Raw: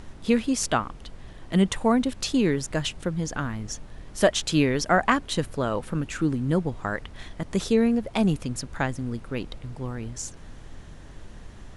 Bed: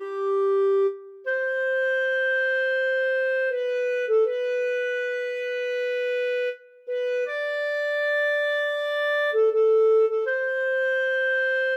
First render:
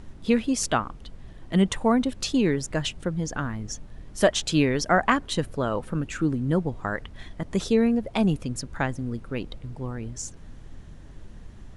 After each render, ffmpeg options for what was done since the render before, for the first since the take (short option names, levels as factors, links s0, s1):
-af "afftdn=nr=6:nf=-44"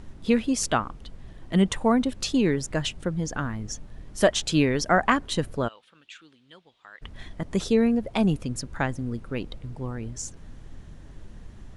-filter_complex "[0:a]asplit=3[s0][s1][s2];[s0]afade=t=out:st=5.67:d=0.02[s3];[s1]bandpass=f=3400:t=q:w=3.1,afade=t=in:st=5.67:d=0.02,afade=t=out:st=7.01:d=0.02[s4];[s2]afade=t=in:st=7.01:d=0.02[s5];[s3][s4][s5]amix=inputs=3:normalize=0"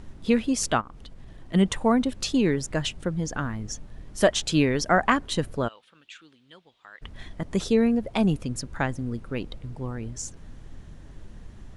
-filter_complex "[0:a]asplit=3[s0][s1][s2];[s0]afade=t=out:st=0.8:d=0.02[s3];[s1]acompressor=threshold=0.0126:ratio=6:attack=3.2:release=140:knee=1:detection=peak,afade=t=in:st=0.8:d=0.02,afade=t=out:st=1.53:d=0.02[s4];[s2]afade=t=in:st=1.53:d=0.02[s5];[s3][s4][s5]amix=inputs=3:normalize=0"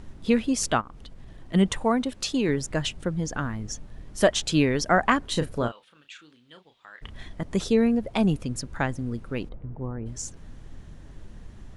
-filter_complex "[0:a]asettb=1/sr,asplit=3[s0][s1][s2];[s0]atrim=end=1.844[s3];[s1]atrim=start=1.84:end=2.49,asetpts=PTS-STARTPTS,afade=t=in:d=0.004:c=qsin,afade=t=out:st=0.646:d=0.004:c=qsin,lowshelf=f=220:g=-7.5[s4];[s2]atrim=start=2.486[s5];[s3][s4]acrossfade=d=0.004:c1=hsin:c2=qsin[s6];[s6][s5]acrossfade=d=0.004:c1=qsin:c2=hsin,asettb=1/sr,asplit=3[s7][s8][s9];[s7]atrim=end=5.294[s10];[s8]atrim=start=5.29:end=7.19,asetpts=PTS-STARTPTS,afade=t=in:d=0.004:c=qsin,afade=t=out:st=1.896:d=0.004:c=qsin,asplit=2[s11][s12];[s12]adelay=33,volume=0.376[s13];[s11][s13]amix=inputs=2:normalize=0,atrim=end_sample=83790[s14];[s9]atrim=start=7.186[s15];[s10][s14]acrossfade=d=0.004:c1=hsin:c2=qsin[s16];[s16][s15]acrossfade=d=0.004:c1=qsin:c2=hsin,asplit=3[s17][s18][s19];[s17]afade=t=out:st=9.48:d=0.02[s20];[s18]lowpass=1200,afade=t=in:st=9.48:d=0.02,afade=t=out:st=10.05:d=0.02[s21];[s19]afade=t=in:st=10.05:d=0.02[s22];[s20][s21][s22]amix=inputs=3:normalize=0"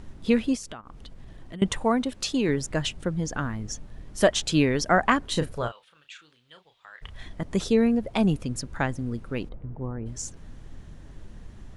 -filter_complex "[0:a]asettb=1/sr,asplit=3[s0][s1][s2];[s0]atrim=end=0.554[s3];[s1]atrim=start=0.55:end=1.62,asetpts=PTS-STARTPTS,afade=t=in:d=0.004:c=qsin,afade=t=out:st=1.066:d=0.004:c=qsin,acompressor=threshold=0.0178:ratio=12:attack=3.2:release=140:knee=1:detection=peak[s4];[s2]atrim=start=1.616[s5];[s3][s4]acrossfade=d=0.004:c1=hsin:c2=qsin[s6];[s6][s5]acrossfade=d=0.004:c1=qsin:c2=hsin,asettb=1/sr,asplit=3[s7][s8][s9];[s7]atrim=end=5.534[s10];[s8]atrim=start=5.53:end=7.23,asetpts=PTS-STARTPTS,afade=t=in:d=0.004:c=qsin,afade=t=out:st=1.696:d=0.004:c=qsin,equalizer=f=260:w=1.5:g=-12[s11];[s9]atrim=start=7.226[s12];[s10][s11]acrossfade=d=0.004:c1=hsin:c2=qsin[s13];[s13][s12]acrossfade=d=0.004:c1=qsin:c2=hsin"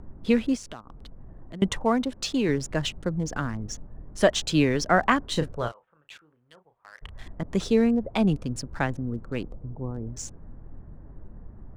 -filter_complex "[0:a]acrossover=split=330|1400[s0][s1][s2];[s2]aeval=exprs='val(0)*gte(abs(val(0)),0.00531)':c=same[s3];[s0][s1][s3]amix=inputs=3:normalize=0,adynamicsmooth=sensitivity=7:basefreq=7200"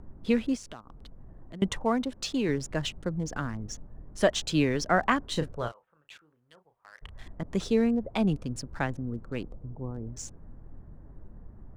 -af "volume=0.668"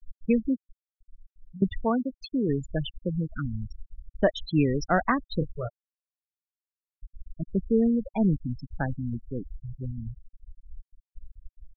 -af "afftfilt=real='re*gte(hypot(re,im),0.0891)':imag='im*gte(hypot(re,im),0.0891)':win_size=1024:overlap=0.75,lowshelf=f=170:g=7"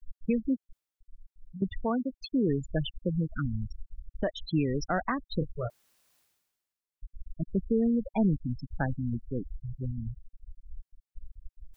-af "alimiter=limit=0.126:level=0:latency=1:release=338,areverse,acompressor=mode=upward:threshold=0.00501:ratio=2.5,areverse"